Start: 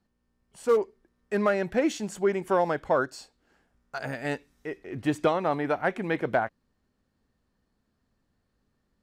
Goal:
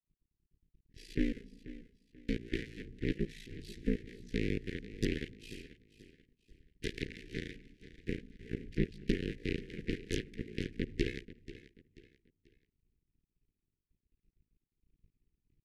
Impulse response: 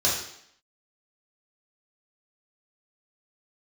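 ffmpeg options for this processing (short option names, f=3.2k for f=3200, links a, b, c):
-filter_complex "[0:a]aemphasis=mode=reproduction:type=riaa,agate=range=-33dB:threshold=-49dB:ratio=3:detection=peak,bass=f=250:g=-11,treble=f=4k:g=3,asplit=2[a][b];[b]alimiter=limit=-23dB:level=0:latency=1:release=321,volume=3dB[c];[a][c]amix=inputs=2:normalize=0,acompressor=threshold=-25dB:ratio=5,aeval=exprs='max(val(0),0)':c=same,aeval=exprs='0.133*(cos(1*acos(clip(val(0)/0.133,-1,1)))-cos(1*PI/2))+0.0266*(cos(8*acos(clip(val(0)/0.133,-1,1)))-cos(8*PI/2))':c=same,aeval=exprs='val(0)*sin(2*PI*49*n/s)':c=same,asetrate=25442,aresample=44100,asuperstop=centerf=900:order=12:qfactor=0.67,aecho=1:1:486|972|1458:0.158|0.0539|0.0183,volume=5dB"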